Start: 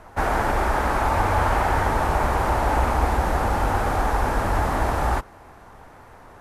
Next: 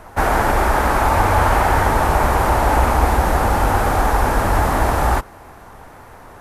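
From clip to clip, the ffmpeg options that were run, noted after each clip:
ffmpeg -i in.wav -af "highshelf=frequency=12000:gain=11.5,volume=5.5dB" out.wav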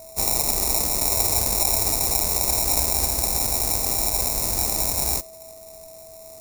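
ffmpeg -i in.wav -af "acrusher=samples=28:mix=1:aa=0.000001,aeval=exprs='val(0)+0.0398*sin(2*PI*650*n/s)':channel_layout=same,aexciter=amount=10.2:drive=5.8:freq=4700,volume=-14dB" out.wav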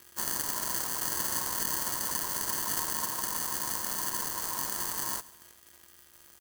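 ffmpeg -i in.wav -af "acrusher=bits=5:mix=0:aa=0.5,aeval=exprs='val(0)*sin(2*PI*1000*n/s)':channel_layout=same,aecho=1:1:133|266|399:0.0891|0.0428|0.0205,volume=-7.5dB" out.wav

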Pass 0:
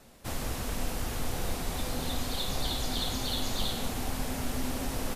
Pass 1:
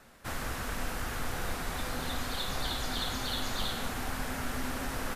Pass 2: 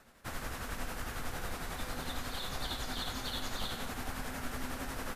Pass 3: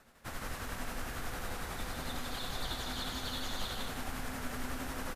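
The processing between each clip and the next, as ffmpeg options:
ffmpeg -i in.wav -af "equalizer=frequency=1500:width_type=o:width=1.2:gain=10,volume=-3.5dB" out.wav
ffmpeg -i in.wav -af "tremolo=f=11:d=0.42,volume=-2.5dB" out.wav
ffmpeg -i in.wav -af "aecho=1:1:154:0.596,volume=-1.5dB" out.wav

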